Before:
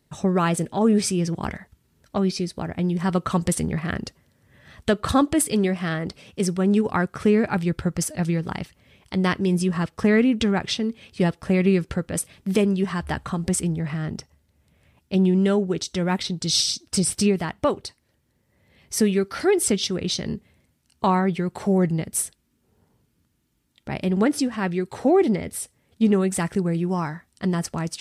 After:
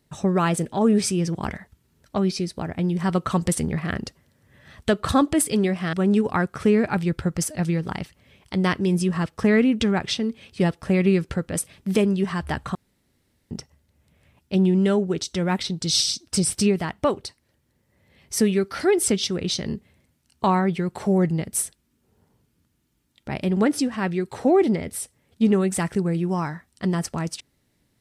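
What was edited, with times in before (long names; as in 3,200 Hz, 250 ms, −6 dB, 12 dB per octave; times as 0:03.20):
0:05.93–0:06.53: remove
0:13.35–0:14.11: fill with room tone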